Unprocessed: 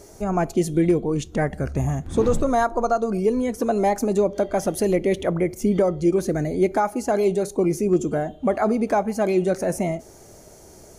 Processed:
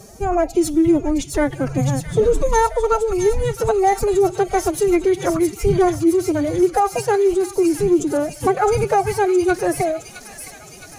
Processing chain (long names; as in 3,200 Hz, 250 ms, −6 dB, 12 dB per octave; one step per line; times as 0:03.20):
phase-vocoder pitch shift with formants kept +11.5 semitones
delay with a high-pass on its return 665 ms, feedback 68%, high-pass 2,800 Hz, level −3.5 dB
level +4.5 dB